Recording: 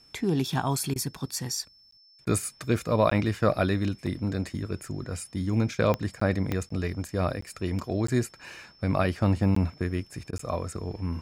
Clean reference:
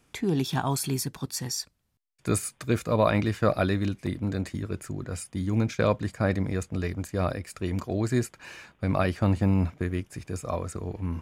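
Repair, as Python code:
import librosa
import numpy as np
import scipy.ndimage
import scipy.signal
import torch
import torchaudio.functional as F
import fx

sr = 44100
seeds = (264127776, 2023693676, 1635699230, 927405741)

y = fx.fix_declick_ar(x, sr, threshold=10.0)
y = fx.notch(y, sr, hz=5300.0, q=30.0)
y = fx.fix_interpolate(y, sr, at_s=(1.91, 3.1, 6.2, 6.69, 7.41, 8.07, 9.55, 10.38), length_ms=14.0)
y = fx.fix_interpolate(y, sr, at_s=(0.94, 2.25, 10.31), length_ms=17.0)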